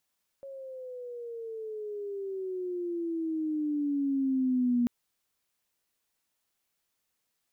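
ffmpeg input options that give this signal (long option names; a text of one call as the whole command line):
ffmpeg -f lavfi -i "aevalsrc='pow(10,(-22.5+17.5*(t/4.44-1))/20)*sin(2*PI*551*4.44/(-14.5*log(2)/12)*(exp(-14.5*log(2)/12*t/4.44)-1))':duration=4.44:sample_rate=44100" out.wav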